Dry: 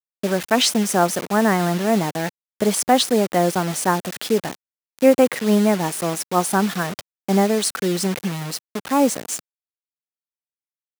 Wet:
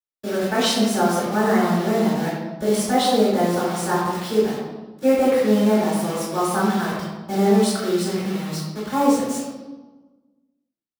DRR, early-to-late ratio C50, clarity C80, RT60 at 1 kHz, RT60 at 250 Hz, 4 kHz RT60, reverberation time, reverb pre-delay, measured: -16.5 dB, -1.5 dB, 2.0 dB, 1.2 s, 1.5 s, 0.85 s, 1.3 s, 3 ms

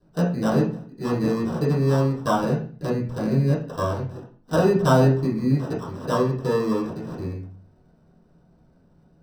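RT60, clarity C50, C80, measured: 0.45 s, 7.0 dB, 11.5 dB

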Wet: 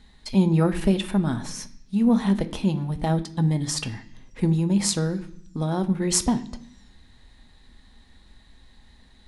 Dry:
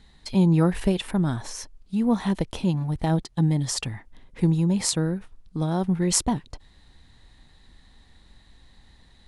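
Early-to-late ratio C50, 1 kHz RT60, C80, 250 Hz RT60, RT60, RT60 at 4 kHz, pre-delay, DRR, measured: 15.0 dB, 0.70 s, 18.0 dB, 0.95 s, 0.65 s, 1.1 s, 3 ms, 7.0 dB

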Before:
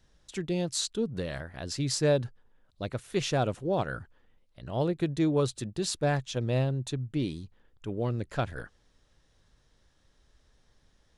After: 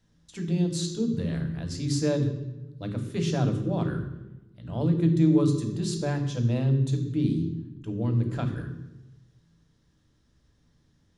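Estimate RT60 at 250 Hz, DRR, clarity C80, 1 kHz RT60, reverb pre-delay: 1.4 s, 4.0 dB, 9.5 dB, 0.95 s, 3 ms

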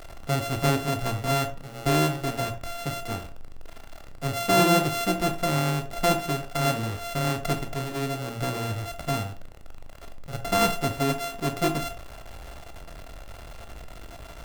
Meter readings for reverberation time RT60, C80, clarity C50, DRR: 0.40 s, 17.0 dB, 12.0 dB, 6.5 dB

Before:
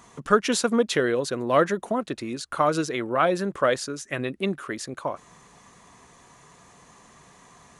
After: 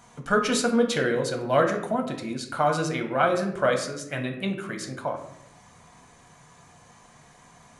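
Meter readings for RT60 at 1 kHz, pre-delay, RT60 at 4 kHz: 0.70 s, 4 ms, 0.45 s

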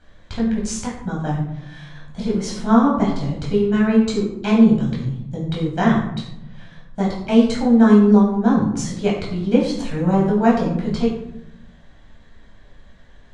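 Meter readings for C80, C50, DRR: 7.0 dB, 4.0 dB, -5.0 dB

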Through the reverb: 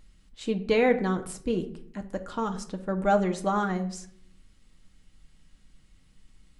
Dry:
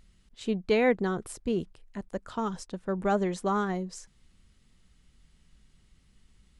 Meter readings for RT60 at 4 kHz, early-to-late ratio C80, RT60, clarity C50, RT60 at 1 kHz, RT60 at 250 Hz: 0.35 s, 17.0 dB, 0.60 s, 13.5 dB, 0.55 s, 0.85 s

